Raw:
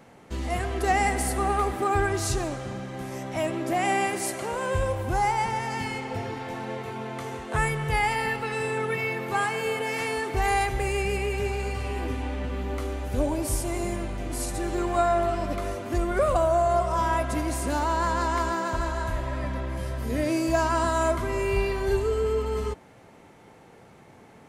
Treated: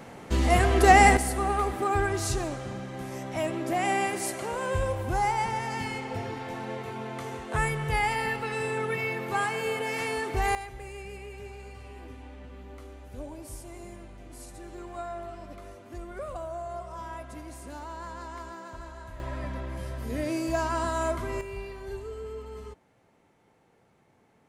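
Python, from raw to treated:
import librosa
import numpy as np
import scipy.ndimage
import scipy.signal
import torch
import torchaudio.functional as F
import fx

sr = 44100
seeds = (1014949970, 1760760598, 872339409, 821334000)

y = fx.gain(x, sr, db=fx.steps((0.0, 7.0), (1.17, -2.0), (10.55, -14.5), (19.2, -4.5), (21.41, -13.0)))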